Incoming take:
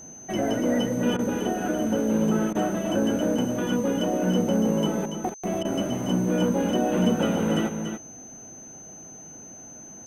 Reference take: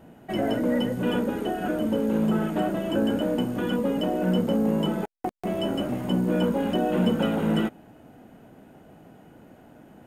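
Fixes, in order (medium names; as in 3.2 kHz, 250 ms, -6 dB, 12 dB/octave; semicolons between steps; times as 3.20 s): band-stop 6.2 kHz, Q 30; interpolate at 1.17/2.53/5.63 s, 18 ms; inverse comb 286 ms -7.5 dB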